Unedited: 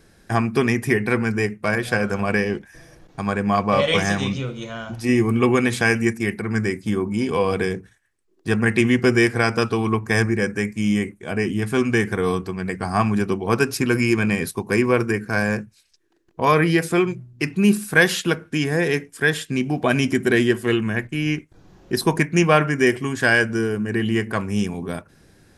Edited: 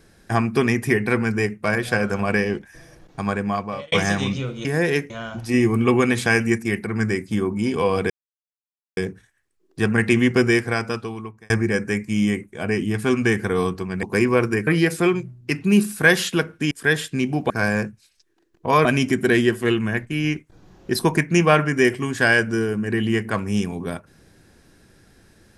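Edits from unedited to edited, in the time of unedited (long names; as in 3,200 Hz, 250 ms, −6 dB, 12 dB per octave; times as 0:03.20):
0:03.27–0:03.92: fade out
0:07.65: splice in silence 0.87 s
0:09.04–0:10.18: fade out
0:12.71–0:14.60: remove
0:15.24–0:16.59: move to 0:19.87
0:18.63–0:19.08: move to 0:04.65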